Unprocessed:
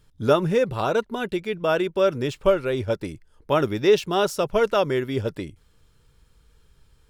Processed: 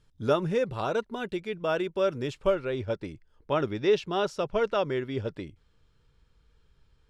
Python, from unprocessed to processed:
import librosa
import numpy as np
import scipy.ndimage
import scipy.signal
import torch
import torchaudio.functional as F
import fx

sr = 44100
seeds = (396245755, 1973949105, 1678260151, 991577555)

y = fx.lowpass(x, sr, hz=fx.steps((0.0, 8600.0), (2.55, 5100.0)), slope=12)
y = F.gain(torch.from_numpy(y), -6.0).numpy()